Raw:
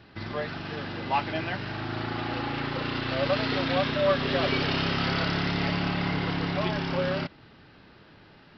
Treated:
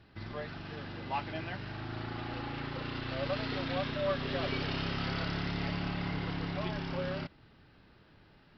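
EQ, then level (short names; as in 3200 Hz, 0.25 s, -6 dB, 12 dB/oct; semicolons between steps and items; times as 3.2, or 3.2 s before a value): low shelf 82 Hz +10.5 dB; -9.0 dB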